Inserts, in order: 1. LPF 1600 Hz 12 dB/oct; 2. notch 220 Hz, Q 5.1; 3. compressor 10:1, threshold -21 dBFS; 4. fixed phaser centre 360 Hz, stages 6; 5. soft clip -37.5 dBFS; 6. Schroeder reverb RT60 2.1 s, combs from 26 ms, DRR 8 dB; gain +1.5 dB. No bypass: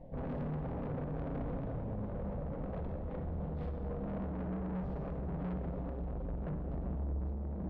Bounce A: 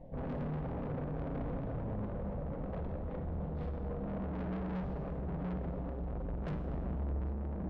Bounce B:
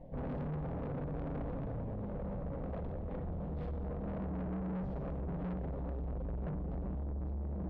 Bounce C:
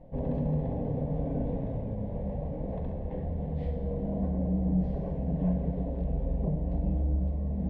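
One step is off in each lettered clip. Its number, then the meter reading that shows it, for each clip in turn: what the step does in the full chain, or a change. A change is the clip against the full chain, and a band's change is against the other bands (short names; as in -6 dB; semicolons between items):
3, mean gain reduction 2.0 dB; 6, crest factor change -5.5 dB; 5, distortion -7 dB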